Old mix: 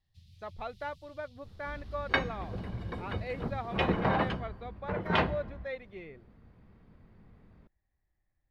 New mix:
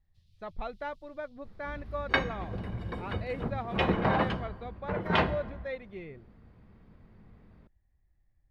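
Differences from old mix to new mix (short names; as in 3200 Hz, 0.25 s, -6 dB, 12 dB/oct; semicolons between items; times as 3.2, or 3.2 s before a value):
speech: add low shelf 210 Hz +11 dB; first sound -9.5 dB; second sound: send +6.0 dB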